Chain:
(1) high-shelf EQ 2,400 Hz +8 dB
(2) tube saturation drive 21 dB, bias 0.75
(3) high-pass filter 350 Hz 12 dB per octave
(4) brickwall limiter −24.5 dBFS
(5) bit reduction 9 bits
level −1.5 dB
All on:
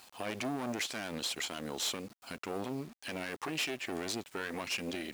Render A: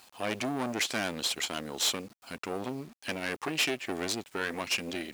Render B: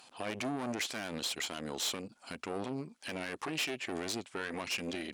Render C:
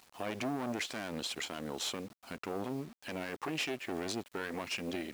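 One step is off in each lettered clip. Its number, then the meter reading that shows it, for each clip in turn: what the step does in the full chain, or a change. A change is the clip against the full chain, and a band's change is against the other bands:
4, average gain reduction 3.0 dB
5, distortion level −22 dB
1, 8 kHz band −4.0 dB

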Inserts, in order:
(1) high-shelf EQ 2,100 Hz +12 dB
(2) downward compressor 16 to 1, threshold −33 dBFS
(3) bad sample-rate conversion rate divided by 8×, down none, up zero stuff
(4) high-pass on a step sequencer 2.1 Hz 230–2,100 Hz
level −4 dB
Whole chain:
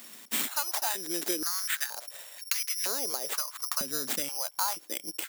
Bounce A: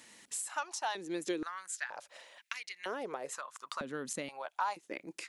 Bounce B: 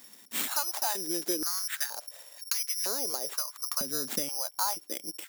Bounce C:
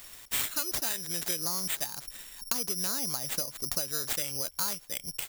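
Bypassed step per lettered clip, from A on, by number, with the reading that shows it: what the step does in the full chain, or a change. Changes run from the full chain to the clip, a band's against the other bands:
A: 3, 4 kHz band −11.5 dB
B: 1, 2 kHz band −4.0 dB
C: 4, 125 Hz band +12.0 dB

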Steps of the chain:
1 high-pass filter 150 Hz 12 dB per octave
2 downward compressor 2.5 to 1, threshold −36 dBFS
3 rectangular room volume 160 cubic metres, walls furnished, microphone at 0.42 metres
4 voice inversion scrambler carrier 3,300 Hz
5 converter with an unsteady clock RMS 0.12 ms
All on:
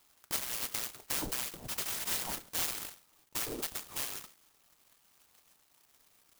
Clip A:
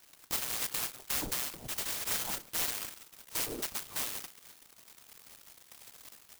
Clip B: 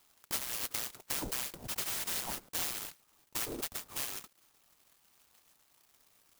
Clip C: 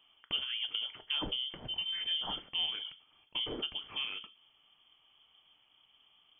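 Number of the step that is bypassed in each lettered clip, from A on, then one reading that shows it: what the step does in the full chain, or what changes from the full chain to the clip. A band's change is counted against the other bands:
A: 1, change in crest factor −2.0 dB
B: 3, change in momentary loudness spread −2 LU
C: 5, 4 kHz band +11.5 dB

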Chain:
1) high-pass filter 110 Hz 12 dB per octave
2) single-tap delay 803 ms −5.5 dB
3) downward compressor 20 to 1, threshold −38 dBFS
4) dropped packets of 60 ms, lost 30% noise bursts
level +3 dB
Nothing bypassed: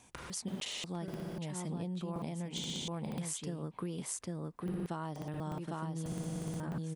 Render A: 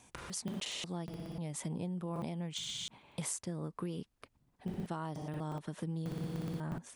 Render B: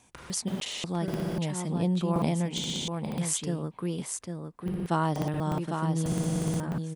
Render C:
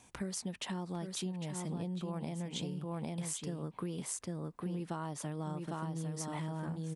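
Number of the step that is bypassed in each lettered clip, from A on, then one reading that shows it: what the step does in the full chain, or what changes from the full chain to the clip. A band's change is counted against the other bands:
2, change in momentary loudness spread +1 LU
3, average gain reduction 7.5 dB
4, 4 kHz band −3.5 dB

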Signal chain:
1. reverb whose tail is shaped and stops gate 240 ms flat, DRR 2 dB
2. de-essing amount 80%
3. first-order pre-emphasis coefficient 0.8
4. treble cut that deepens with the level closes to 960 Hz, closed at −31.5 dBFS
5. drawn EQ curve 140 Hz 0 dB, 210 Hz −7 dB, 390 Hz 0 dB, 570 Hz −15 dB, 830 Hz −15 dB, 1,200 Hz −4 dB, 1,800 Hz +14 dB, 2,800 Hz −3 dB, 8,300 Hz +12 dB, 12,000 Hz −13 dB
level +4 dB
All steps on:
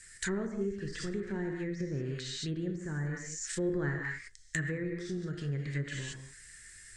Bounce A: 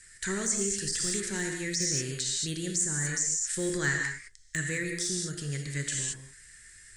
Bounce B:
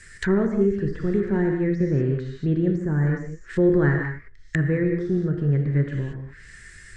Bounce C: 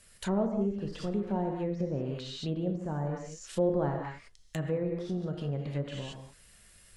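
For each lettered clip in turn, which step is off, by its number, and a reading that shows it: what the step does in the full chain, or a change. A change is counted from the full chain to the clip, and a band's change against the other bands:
4, 8 kHz band +14.0 dB
3, 2 kHz band −7.0 dB
5, change in crest factor −5.0 dB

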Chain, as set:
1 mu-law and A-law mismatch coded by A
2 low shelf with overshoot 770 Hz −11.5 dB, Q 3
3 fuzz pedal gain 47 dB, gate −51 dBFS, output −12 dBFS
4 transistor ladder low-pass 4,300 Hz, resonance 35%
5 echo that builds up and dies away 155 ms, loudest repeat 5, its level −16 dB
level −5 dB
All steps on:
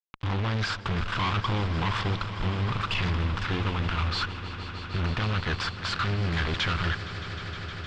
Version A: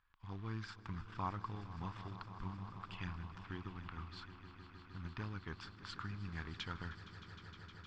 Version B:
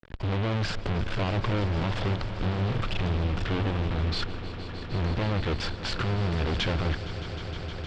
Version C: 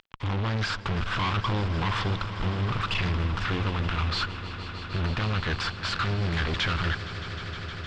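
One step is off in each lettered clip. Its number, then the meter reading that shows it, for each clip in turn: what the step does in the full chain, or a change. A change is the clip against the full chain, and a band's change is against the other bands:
3, distortion level −2 dB
2, 500 Hz band +7.0 dB
1, distortion level −27 dB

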